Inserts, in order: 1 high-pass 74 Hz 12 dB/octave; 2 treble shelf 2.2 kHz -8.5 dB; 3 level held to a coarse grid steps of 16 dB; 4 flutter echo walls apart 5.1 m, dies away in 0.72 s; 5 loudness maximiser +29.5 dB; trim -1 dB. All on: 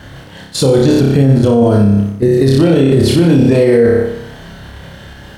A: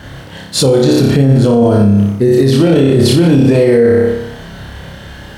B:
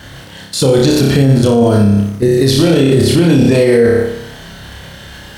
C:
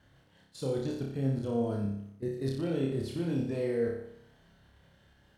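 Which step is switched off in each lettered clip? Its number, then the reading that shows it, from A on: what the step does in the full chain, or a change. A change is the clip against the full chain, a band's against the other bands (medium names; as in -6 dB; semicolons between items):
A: 3, momentary loudness spread change +10 LU; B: 2, 8 kHz band +4.0 dB; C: 5, crest factor change +6.0 dB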